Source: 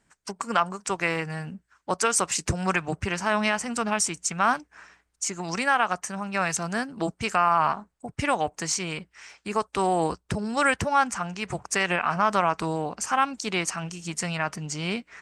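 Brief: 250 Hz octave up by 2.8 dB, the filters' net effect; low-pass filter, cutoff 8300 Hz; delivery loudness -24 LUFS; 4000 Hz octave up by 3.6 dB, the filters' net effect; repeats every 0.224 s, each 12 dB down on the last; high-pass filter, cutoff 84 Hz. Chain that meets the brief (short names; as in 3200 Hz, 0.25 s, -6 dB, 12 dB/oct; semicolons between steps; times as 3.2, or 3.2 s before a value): HPF 84 Hz; LPF 8300 Hz; bell 250 Hz +4 dB; bell 4000 Hz +5.5 dB; feedback echo 0.224 s, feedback 25%, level -12 dB; gain +1 dB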